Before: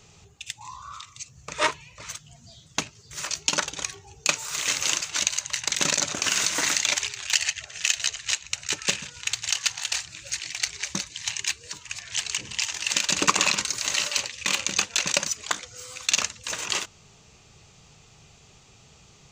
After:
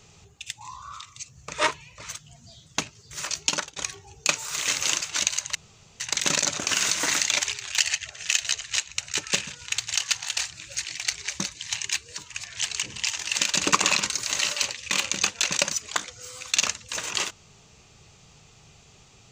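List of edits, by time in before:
0:03.49–0:03.76: fade out, to −21 dB
0:05.55: splice in room tone 0.45 s

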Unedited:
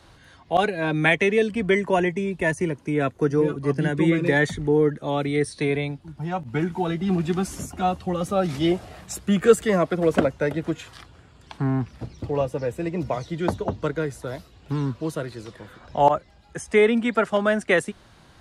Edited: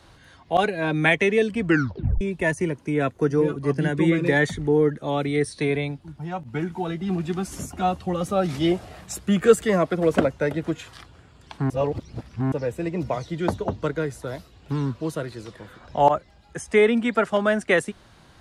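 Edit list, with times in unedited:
0:01.64: tape stop 0.57 s
0:06.17–0:07.52: clip gain −3 dB
0:11.70–0:12.52: reverse

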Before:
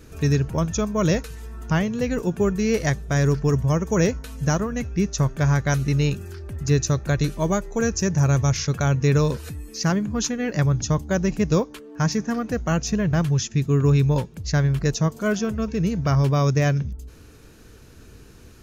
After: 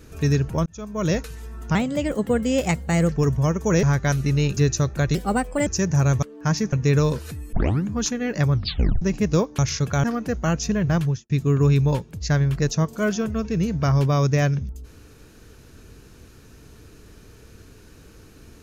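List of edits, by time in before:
0:00.66–0:01.20: fade in
0:01.75–0:03.38: play speed 119%
0:04.09–0:05.45: remove
0:06.19–0:06.67: remove
0:07.25–0:07.90: play speed 126%
0:08.46–0:08.91: swap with 0:11.77–0:12.27
0:09.71: tape start 0.34 s
0:10.71: tape stop 0.49 s
0:13.26–0:13.53: fade out and dull

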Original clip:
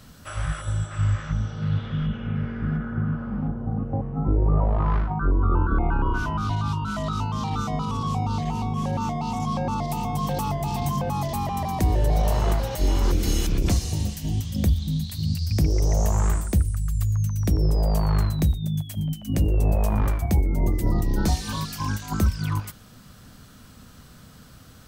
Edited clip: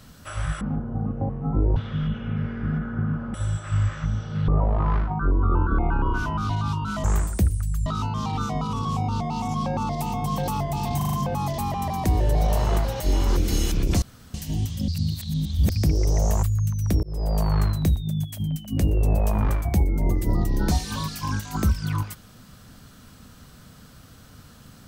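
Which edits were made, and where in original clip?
0:00.61–0:01.75: swap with 0:03.33–0:04.48
0:08.39–0:09.12: remove
0:10.88: stutter 0.04 s, 5 plays
0:13.77–0:14.09: fill with room tone
0:14.63–0:15.45: reverse
0:16.18–0:17.00: move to 0:07.04
0:17.60–0:18.07: fade in equal-power

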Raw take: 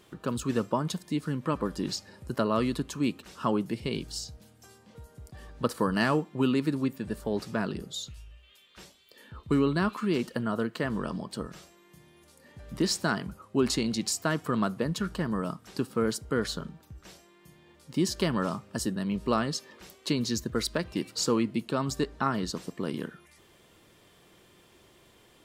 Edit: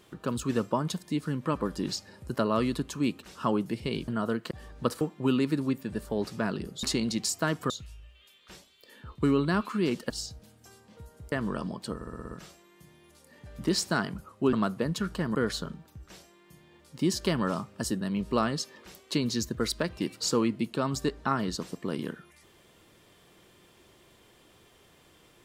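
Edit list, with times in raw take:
0:04.08–0:05.30: swap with 0:10.38–0:10.81
0:05.80–0:06.16: remove
0:11.44: stutter 0.06 s, 7 plays
0:13.66–0:14.53: move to 0:07.98
0:15.35–0:16.30: remove

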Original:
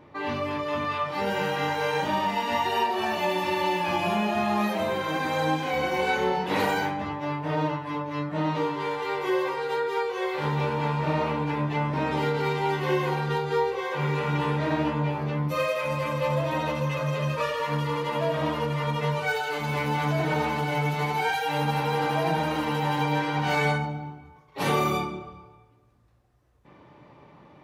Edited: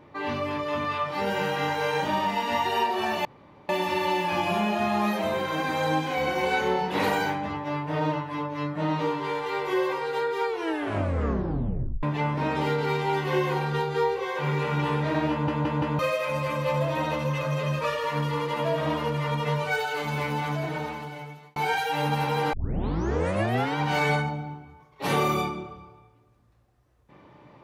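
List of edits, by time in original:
0:03.25: splice in room tone 0.44 s
0:10.04: tape stop 1.55 s
0:14.87: stutter in place 0.17 s, 4 plays
0:19.60–0:21.12: fade out
0:22.09: tape start 1.24 s

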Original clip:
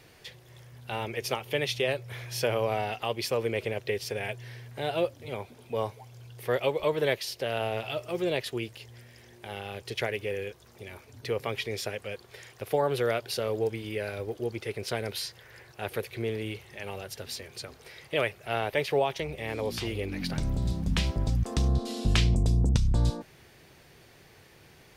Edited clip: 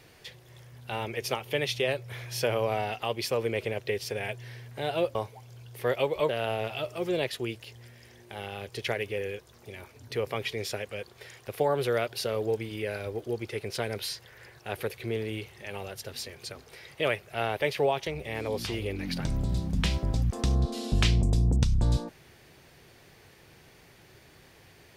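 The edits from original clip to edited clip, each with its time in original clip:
0:05.15–0:05.79: remove
0:06.93–0:07.42: remove

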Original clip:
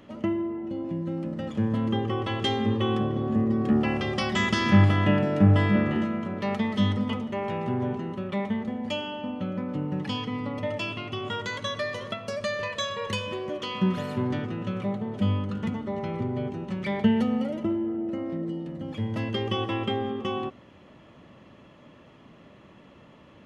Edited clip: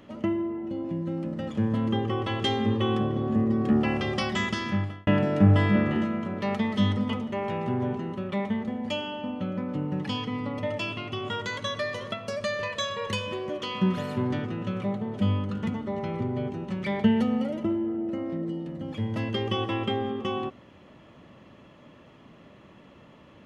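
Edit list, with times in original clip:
0:04.16–0:05.07: fade out

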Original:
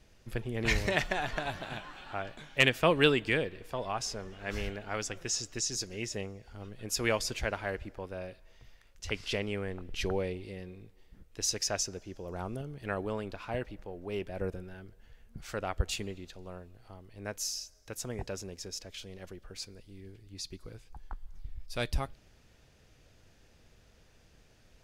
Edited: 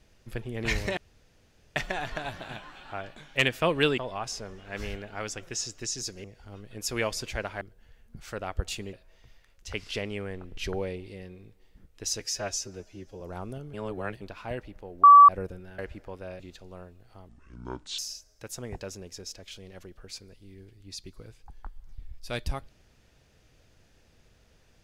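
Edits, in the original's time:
0:00.97: splice in room tone 0.79 s
0:03.19–0:03.72: remove
0:05.98–0:06.32: remove
0:07.69–0:08.30: swap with 0:14.82–0:16.14
0:11.57–0:12.24: time-stretch 1.5×
0:12.77–0:13.25: reverse
0:14.07–0:14.32: beep over 1,150 Hz −8.5 dBFS
0:17.03–0:17.45: play speed 60%

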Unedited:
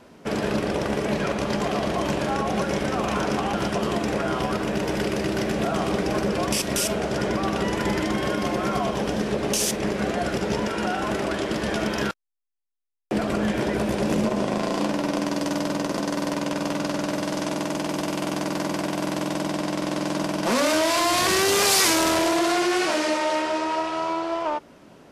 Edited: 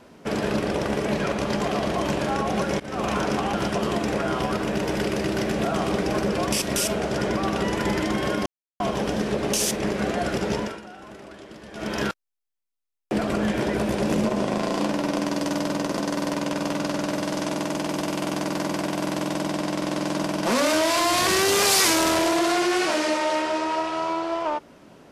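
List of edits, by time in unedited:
0:02.80–0:03.05: fade in, from −22 dB
0:08.46–0:08.80: silence
0:10.45–0:12.09: duck −16.5 dB, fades 0.36 s equal-power

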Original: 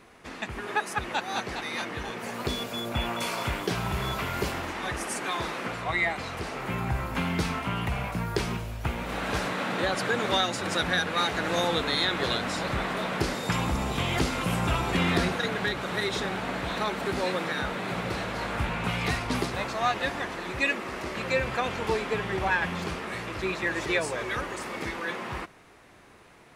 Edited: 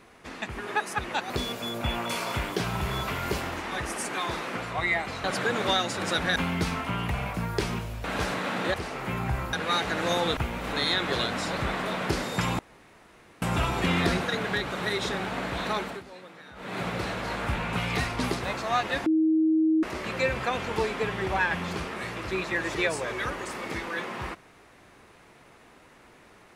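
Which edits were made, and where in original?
0:01.30–0:02.41: remove
0:06.35–0:07.14: swap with 0:09.88–0:11.00
0:08.82–0:09.18: move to 0:11.84
0:13.70–0:14.53: fill with room tone
0:16.91–0:17.89: duck −17.5 dB, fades 0.23 s
0:20.17–0:20.94: beep over 317 Hz −19 dBFS

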